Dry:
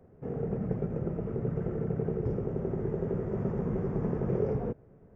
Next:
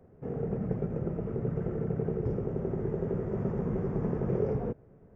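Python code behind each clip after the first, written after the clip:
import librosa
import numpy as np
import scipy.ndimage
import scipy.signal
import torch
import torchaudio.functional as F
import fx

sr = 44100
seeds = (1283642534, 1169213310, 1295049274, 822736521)

y = x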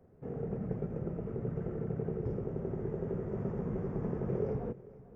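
y = x + 10.0 ** (-19.0 / 20.0) * np.pad(x, (int(446 * sr / 1000.0), 0))[:len(x)]
y = y * 10.0 ** (-4.5 / 20.0)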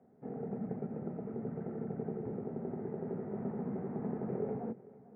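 y = fx.cabinet(x, sr, low_hz=210.0, low_slope=12, high_hz=2100.0, hz=(230.0, 350.0, 530.0, 780.0, 1100.0, 1600.0), db=(7, -4, -5, 5, -6, -3))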